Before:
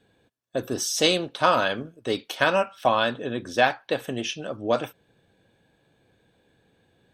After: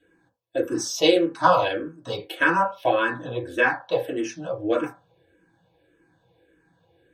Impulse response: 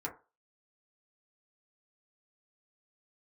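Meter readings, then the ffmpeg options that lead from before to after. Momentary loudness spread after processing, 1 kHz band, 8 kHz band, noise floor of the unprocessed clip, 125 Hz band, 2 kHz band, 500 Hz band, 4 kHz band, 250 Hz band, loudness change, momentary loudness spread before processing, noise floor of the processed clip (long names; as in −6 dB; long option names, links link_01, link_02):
13 LU, +1.5 dB, −3.0 dB, −67 dBFS, −0.5 dB, +2.5 dB, +1.5 dB, −3.0 dB, +3.5 dB, +1.0 dB, 11 LU, −66 dBFS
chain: -filter_complex "[1:a]atrim=start_sample=2205,asetrate=48510,aresample=44100[link_01];[0:a][link_01]afir=irnorm=-1:irlink=0,asplit=2[link_02][link_03];[link_03]afreqshift=-1.7[link_04];[link_02][link_04]amix=inputs=2:normalize=1,volume=2.5dB"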